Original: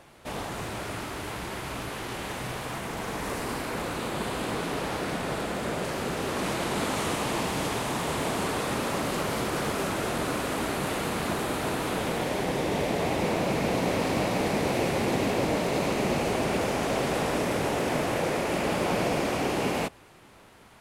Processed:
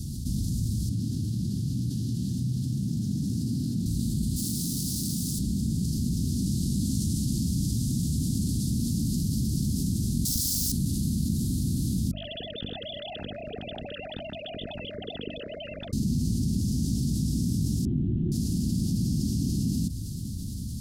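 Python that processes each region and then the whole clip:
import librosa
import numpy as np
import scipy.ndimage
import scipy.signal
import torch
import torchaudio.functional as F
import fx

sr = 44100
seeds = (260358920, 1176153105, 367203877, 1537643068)

y = fx.chain(x, sr, fx.highpass(hz=97.0, slope=24),
    fx.high_shelf(hz=5400.0, db=-12.0), at=(0.89, 3.86))
y = fx.chain(y, sr, fx.high_shelf(hz=5000.0, db=11.0),
    fx.clip_hard(threshold_db=-32.5),
    fx.highpass(hz=180.0, slope=6), at=(4.36, 5.39))
y = fx.chain(y, sr, fx.tilt_eq(slope=4.5),
    fx.doppler_dist(depth_ms=0.89), at=(10.25, 10.72))
y = fx.chain(y, sr, fx.sine_speech(),
    fx.hum_notches(base_hz=50, count=6), at=(12.11, 15.93))
y = fx.chain(y, sr, fx.delta_mod(bps=16000, step_db=-38.5),
    fx.peak_eq(hz=360.0, db=13.5, octaves=0.23), at=(17.85, 18.32))
y = scipy.signal.sosfilt(scipy.signal.ellip(3, 1.0, 40, [240.0, 4800.0], 'bandstop', fs=sr, output='sos'), y)
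y = fx.peak_eq(y, sr, hz=78.0, db=12.0, octaves=2.8)
y = fx.env_flatten(y, sr, amount_pct=70)
y = F.gain(torch.from_numpy(y), -3.0).numpy()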